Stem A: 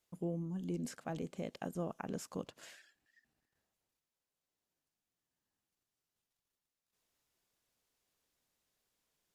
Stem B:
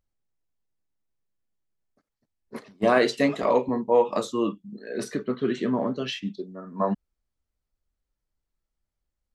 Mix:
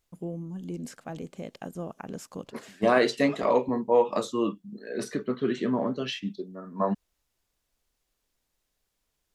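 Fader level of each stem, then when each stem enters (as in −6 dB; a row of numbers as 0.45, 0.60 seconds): +3.0, −1.5 decibels; 0.00, 0.00 seconds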